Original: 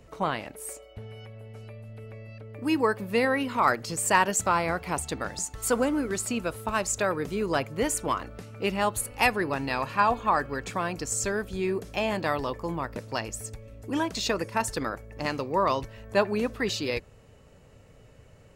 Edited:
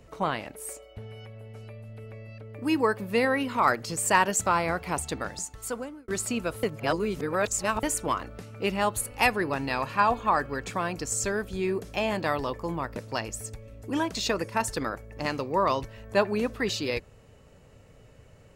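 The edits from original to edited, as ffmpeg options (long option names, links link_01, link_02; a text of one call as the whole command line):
ffmpeg -i in.wav -filter_complex "[0:a]asplit=4[link_01][link_02][link_03][link_04];[link_01]atrim=end=6.08,asetpts=PTS-STARTPTS,afade=type=out:start_time=5.17:duration=0.91[link_05];[link_02]atrim=start=6.08:end=6.632,asetpts=PTS-STARTPTS,afade=type=in:duration=0.004:curve=hsin[link_06];[link_03]atrim=start=6.628:end=7.832,asetpts=PTS-STARTPTS,areverse[link_07];[link_04]atrim=start=7.828[link_08];[link_05][link_06]concat=n=2:v=0:a=1[link_09];[link_09][link_07]acrossfade=duration=0.004:curve1=hsin:curve2=hsin[link_10];[link_10][link_08]acrossfade=duration=0.004:curve1=hsin:curve2=hsin" out.wav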